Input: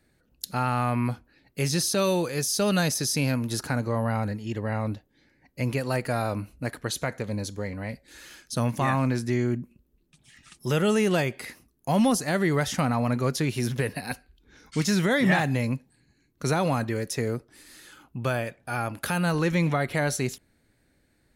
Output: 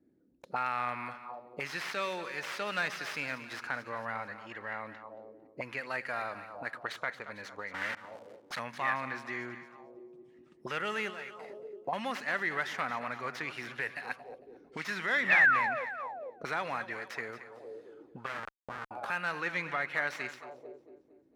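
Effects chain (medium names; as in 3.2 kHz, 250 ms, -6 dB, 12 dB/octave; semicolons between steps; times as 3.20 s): tracing distortion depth 0.17 ms; dynamic bell 1.6 kHz, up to -6 dB, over -46 dBFS, Q 2.3; 7.74–8.59 s: companded quantiser 2-bit; 11.10–11.93 s: compression 10:1, threshold -33 dBFS, peak gain reduction 13 dB; 15.30–15.85 s: painted sound fall 470–2700 Hz -26 dBFS; two-band feedback delay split 380 Hz, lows 105 ms, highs 226 ms, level -12.5 dB; 18.26–18.91 s: Schmitt trigger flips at -27 dBFS; auto-wah 290–1700 Hz, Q 2.9, up, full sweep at -27 dBFS; trim +5.5 dB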